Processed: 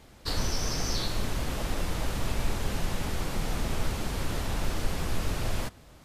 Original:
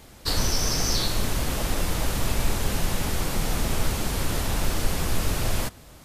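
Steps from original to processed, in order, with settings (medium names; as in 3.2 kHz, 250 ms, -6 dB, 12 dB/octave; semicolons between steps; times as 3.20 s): treble shelf 7.1 kHz -8.5 dB; trim -4.5 dB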